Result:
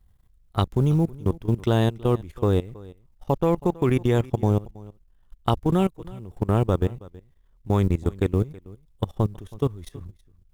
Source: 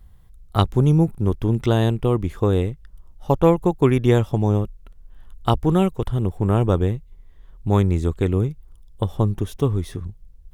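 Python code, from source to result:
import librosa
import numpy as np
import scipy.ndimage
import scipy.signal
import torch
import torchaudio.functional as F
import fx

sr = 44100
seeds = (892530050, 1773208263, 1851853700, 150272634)

y = fx.law_mismatch(x, sr, coded='A')
y = fx.level_steps(y, sr, step_db=19)
y = y + 10.0 ** (-21.0 / 20.0) * np.pad(y, (int(323 * sr / 1000.0), 0))[:len(y)]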